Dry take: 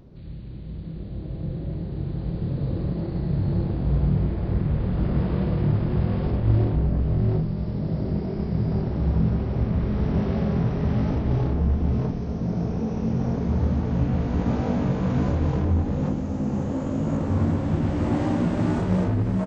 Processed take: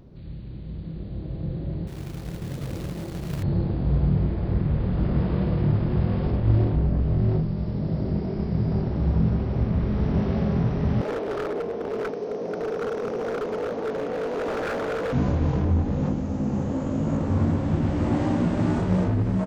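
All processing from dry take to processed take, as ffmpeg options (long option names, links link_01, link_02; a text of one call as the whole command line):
ffmpeg -i in.wav -filter_complex "[0:a]asettb=1/sr,asplit=3[link_01][link_02][link_03];[link_01]atrim=end=1.874[link_04];[link_02]atrim=start=1.87:end=3.43,asetpts=PTS-STARTPTS,afade=type=in:duration=0.004:curve=qsin,afade=type=out:start_time=1.556:duration=0.004:curve=qsin,lowshelf=frequency=420:gain=-6.5,acrusher=bits=3:mode=log:mix=0:aa=0.000001[link_05];[link_03]atrim=start=3.426[link_06];[link_04][link_05]acrossfade=duration=0.004:curve1=hsin:curve2=qsin[link_07];[link_07][link_06]acrossfade=duration=0.004:curve1=qsin:curve2=hsin,asettb=1/sr,asplit=3[link_08][link_09][link_10];[link_08]atrim=end=11.014[link_11];[link_09]atrim=start=11.01:end=15.13,asetpts=PTS-STARTPTS,afade=type=in:duration=0.004:curve=qsin,afade=type=out:start_time=4.116:duration=0.004:curve=qsin,highpass=frequency=450:width_type=q:width=3.7,aeval=exprs='0.075*(abs(mod(val(0)/0.075+3,4)-2)-1)':channel_layout=same[link_12];[link_10]atrim=start=15.126[link_13];[link_11][link_12]acrossfade=duration=0.004:curve1=hsin:curve2=qsin[link_14];[link_14][link_13]acrossfade=duration=0.004:curve1=qsin:curve2=hsin" out.wav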